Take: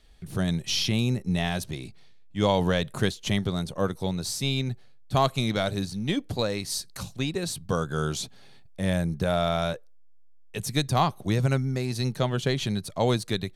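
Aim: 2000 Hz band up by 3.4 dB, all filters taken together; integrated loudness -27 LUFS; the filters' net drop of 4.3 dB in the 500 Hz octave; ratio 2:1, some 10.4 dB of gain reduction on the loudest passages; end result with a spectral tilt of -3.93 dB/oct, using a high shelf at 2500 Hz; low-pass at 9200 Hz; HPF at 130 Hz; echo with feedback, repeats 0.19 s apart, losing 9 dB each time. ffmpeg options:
-af "highpass=130,lowpass=9.2k,equalizer=f=500:t=o:g=-6,equalizer=f=2k:t=o:g=3,highshelf=f=2.5k:g=3.5,acompressor=threshold=-39dB:ratio=2,aecho=1:1:190|380|570|760:0.355|0.124|0.0435|0.0152,volume=9dB"

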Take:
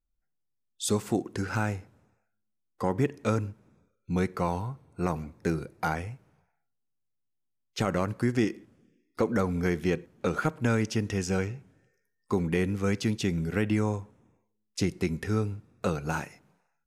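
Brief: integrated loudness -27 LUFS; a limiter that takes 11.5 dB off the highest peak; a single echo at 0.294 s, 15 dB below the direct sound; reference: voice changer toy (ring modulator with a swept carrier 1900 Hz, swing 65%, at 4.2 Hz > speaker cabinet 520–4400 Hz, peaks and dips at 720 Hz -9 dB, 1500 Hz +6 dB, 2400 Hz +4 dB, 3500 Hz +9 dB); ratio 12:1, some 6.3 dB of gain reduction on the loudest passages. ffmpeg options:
-af "acompressor=threshold=-27dB:ratio=12,alimiter=level_in=2.5dB:limit=-24dB:level=0:latency=1,volume=-2.5dB,aecho=1:1:294:0.178,aeval=exprs='val(0)*sin(2*PI*1900*n/s+1900*0.65/4.2*sin(2*PI*4.2*n/s))':c=same,highpass=520,equalizer=f=720:t=q:w=4:g=-9,equalizer=f=1.5k:t=q:w=4:g=6,equalizer=f=2.4k:t=q:w=4:g=4,equalizer=f=3.5k:t=q:w=4:g=9,lowpass=f=4.4k:w=0.5412,lowpass=f=4.4k:w=1.3066,volume=8dB"

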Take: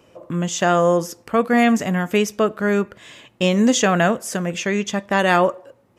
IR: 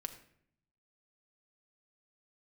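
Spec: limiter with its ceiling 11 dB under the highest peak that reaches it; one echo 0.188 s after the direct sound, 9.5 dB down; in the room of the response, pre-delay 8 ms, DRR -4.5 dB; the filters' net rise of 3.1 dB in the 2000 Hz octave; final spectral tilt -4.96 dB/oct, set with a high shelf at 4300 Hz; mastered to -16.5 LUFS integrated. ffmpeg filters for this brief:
-filter_complex "[0:a]equalizer=f=2k:t=o:g=5.5,highshelf=f=4.3k:g=-8.5,alimiter=limit=-12.5dB:level=0:latency=1,aecho=1:1:188:0.335,asplit=2[a][b];[1:a]atrim=start_sample=2205,adelay=8[c];[b][c]afir=irnorm=-1:irlink=0,volume=6.5dB[d];[a][d]amix=inputs=2:normalize=0"

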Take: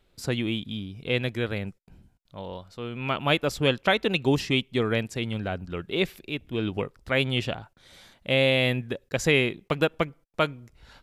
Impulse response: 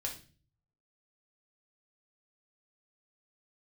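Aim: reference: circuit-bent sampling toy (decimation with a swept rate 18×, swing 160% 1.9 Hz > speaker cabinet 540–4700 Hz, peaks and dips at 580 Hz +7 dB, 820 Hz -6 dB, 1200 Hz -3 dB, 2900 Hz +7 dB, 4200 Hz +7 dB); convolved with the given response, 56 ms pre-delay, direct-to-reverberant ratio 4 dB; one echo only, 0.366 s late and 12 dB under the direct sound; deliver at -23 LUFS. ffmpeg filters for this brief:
-filter_complex "[0:a]aecho=1:1:366:0.251,asplit=2[a][b];[1:a]atrim=start_sample=2205,adelay=56[c];[b][c]afir=irnorm=-1:irlink=0,volume=-4.5dB[d];[a][d]amix=inputs=2:normalize=0,acrusher=samples=18:mix=1:aa=0.000001:lfo=1:lforange=28.8:lforate=1.9,highpass=540,equalizer=f=580:t=q:w=4:g=7,equalizer=f=820:t=q:w=4:g=-6,equalizer=f=1.2k:t=q:w=4:g=-3,equalizer=f=2.9k:t=q:w=4:g=7,equalizer=f=4.2k:t=q:w=4:g=7,lowpass=f=4.7k:w=0.5412,lowpass=f=4.7k:w=1.3066,volume=2.5dB"

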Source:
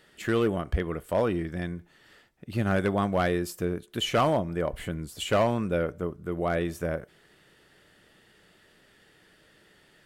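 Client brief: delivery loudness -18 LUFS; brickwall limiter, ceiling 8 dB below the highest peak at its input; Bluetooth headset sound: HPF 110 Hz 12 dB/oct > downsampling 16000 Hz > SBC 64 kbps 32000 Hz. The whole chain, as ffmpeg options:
-af "alimiter=limit=-24dB:level=0:latency=1,highpass=110,aresample=16000,aresample=44100,volume=16dB" -ar 32000 -c:a sbc -b:a 64k

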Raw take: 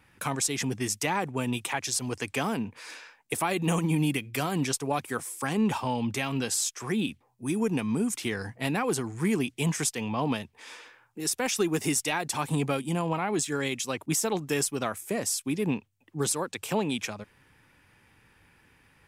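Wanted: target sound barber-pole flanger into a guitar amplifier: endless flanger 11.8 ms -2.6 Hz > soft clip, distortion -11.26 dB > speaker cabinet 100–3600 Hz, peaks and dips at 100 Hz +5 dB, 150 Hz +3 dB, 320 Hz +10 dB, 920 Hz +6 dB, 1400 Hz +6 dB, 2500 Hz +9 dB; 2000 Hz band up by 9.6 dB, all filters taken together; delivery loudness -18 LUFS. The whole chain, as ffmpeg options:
-filter_complex "[0:a]equalizer=f=2k:t=o:g=5,asplit=2[a][b];[b]adelay=11.8,afreqshift=-2.6[c];[a][c]amix=inputs=2:normalize=1,asoftclip=threshold=-28dB,highpass=100,equalizer=f=100:t=q:w=4:g=5,equalizer=f=150:t=q:w=4:g=3,equalizer=f=320:t=q:w=4:g=10,equalizer=f=920:t=q:w=4:g=6,equalizer=f=1.4k:t=q:w=4:g=6,equalizer=f=2.5k:t=q:w=4:g=9,lowpass=f=3.6k:w=0.5412,lowpass=f=3.6k:w=1.3066,volume=13dB"

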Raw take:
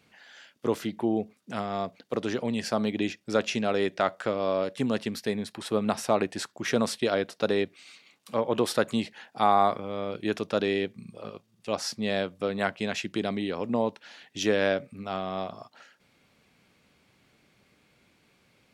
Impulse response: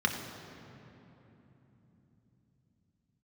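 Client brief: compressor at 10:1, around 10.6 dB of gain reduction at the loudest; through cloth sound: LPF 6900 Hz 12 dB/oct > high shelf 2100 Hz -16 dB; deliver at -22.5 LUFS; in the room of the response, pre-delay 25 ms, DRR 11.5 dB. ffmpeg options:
-filter_complex "[0:a]acompressor=threshold=-28dB:ratio=10,asplit=2[a][b];[1:a]atrim=start_sample=2205,adelay=25[c];[b][c]afir=irnorm=-1:irlink=0,volume=-21.5dB[d];[a][d]amix=inputs=2:normalize=0,lowpass=6.9k,highshelf=f=2.1k:g=-16,volume=14dB"

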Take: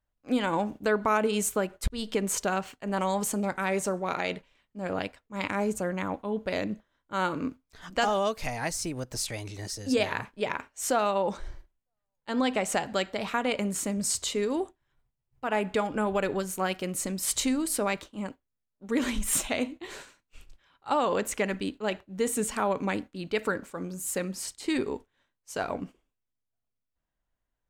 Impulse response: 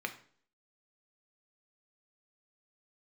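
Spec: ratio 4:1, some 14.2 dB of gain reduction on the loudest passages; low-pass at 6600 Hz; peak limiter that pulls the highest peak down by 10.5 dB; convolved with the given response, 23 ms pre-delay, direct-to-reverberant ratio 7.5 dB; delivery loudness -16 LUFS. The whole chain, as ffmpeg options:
-filter_complex "[0:a]lowpass=6.6k,acompressor=threshold=-39dB:ratio=4,alimiter=level_in=9.5dB:limit=-24dB:level=0:latency=1,volume=-9.5dB,asplit=2[a][b];[1:a]atrim=start_sample=2205,adelay=23[c];[b][c]afir=irnorm=-1:irlink=0,volume=-11dB[d];[a][d]amix=inputs=2:normalize=0,volume=27.5dB"

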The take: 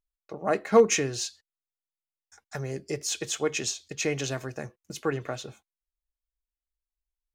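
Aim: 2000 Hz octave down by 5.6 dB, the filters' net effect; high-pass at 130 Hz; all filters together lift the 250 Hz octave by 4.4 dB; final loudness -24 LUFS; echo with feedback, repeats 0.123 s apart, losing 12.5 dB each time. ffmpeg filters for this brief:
-af "highpass=130,equalizer=f=250:t=o:g=6,equalizer=f=2k:t=o:g=-7.5,aecho=1:1:123|246|369:0.237|0.0569|0.0137,volume=3dB"

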